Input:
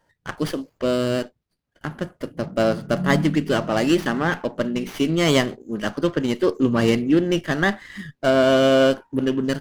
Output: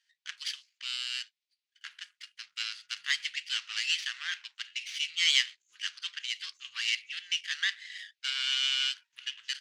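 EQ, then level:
inverse Chebyshev high-pass filter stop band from 660 Hz, stop band 60 dB
high-frequency loss of the air 130 metres
high-shelf EQ 3,200 Hz +10 dB
0.0 dB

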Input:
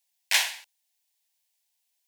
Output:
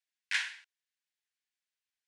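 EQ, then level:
four-pole ladder high-pass 1,300 Hz, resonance 55%
Butterworth low-pass 10,000 Hz
high-shelf EQ 6,200 Hz −12 dB
0.0 dB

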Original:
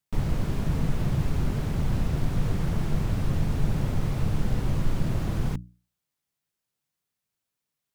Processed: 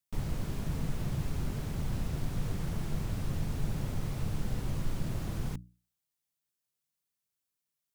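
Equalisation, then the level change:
high-shelf EQ 4,400 Hz +7.5 dB
−8.0 dB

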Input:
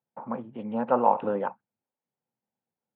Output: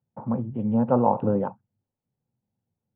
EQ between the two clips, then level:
parametric band 100 Hz +10.5 dB 1.2 octaves
dynamic equaliser 2,000 Hz, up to −5 dB, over −44 dBFS, Q 1.7
spectral tilt −4 dB per octave
−2.0 dB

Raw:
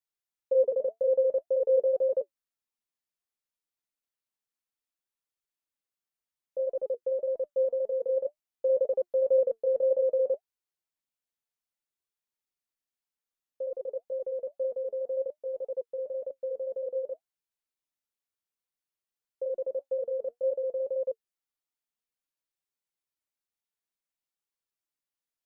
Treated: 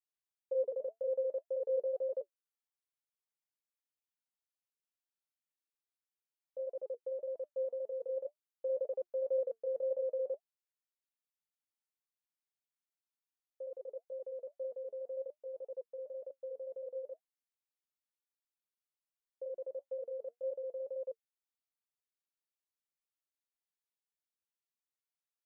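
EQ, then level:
low-shelf EQ 240 Hz −10.5 dB
−8.0 dB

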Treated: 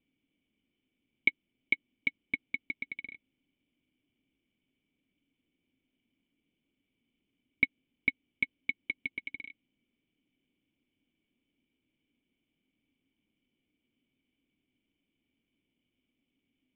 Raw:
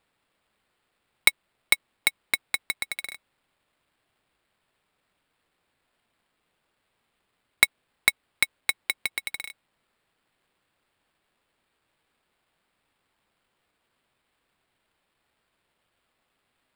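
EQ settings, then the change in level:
formant resonators in series i
+8.0 dB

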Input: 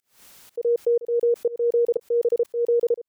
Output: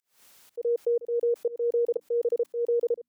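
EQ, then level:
mains-hum notches 60/120/180/240/300 Hz
dynamic equaliser 590 Hz, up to +3 dB, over −30 dBFS, Q 0.72
low-shelf EQ 200 Hz −6.5 dB
−6.5 dB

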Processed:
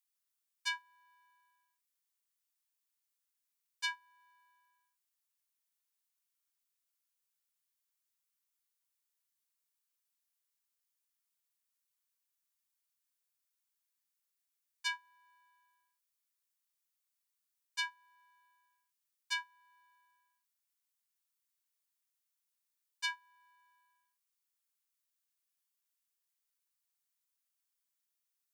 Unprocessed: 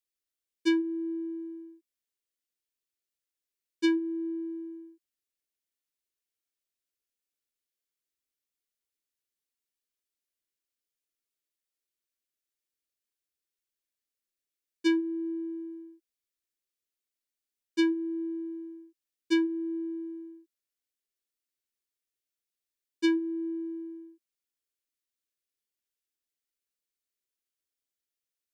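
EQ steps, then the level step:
linear-phase brick-wall high-pass 850 Hz
parametric band 2,500 Hz −6.5 dB 3 octaves
+5.5 dB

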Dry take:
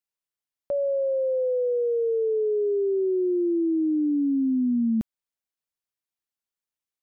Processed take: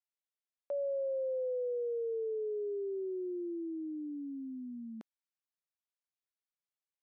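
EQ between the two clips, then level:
high-pass filter 520 Hz 12 dB per octave
high-frequency loss of the air 72 metres
−7.0 dB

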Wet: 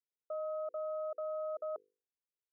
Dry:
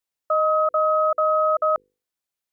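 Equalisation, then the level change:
resonant band-pass 420 Hz, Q 4.8
high-frequency loss of the air 470 metres
−2.5 dB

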